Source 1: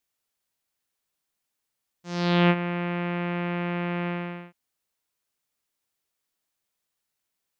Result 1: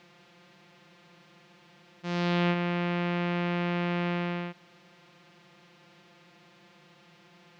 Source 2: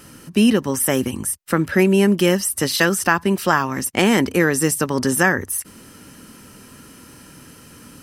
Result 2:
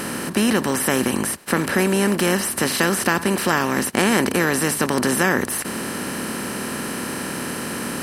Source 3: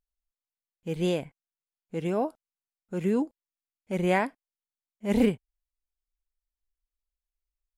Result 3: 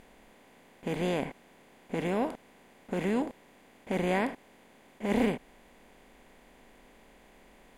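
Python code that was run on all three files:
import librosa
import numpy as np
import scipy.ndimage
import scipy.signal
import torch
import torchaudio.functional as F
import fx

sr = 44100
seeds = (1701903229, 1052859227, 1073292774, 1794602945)

y = fx.bin_compress(x, sr, power=0.4)
y = y * 10.0 ** (-7.0 / 20.0)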